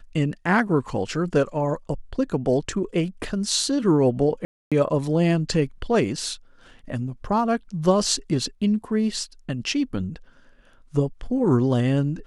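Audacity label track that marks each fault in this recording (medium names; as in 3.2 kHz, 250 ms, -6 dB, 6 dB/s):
4.450000	4.720000	dropout 266 ms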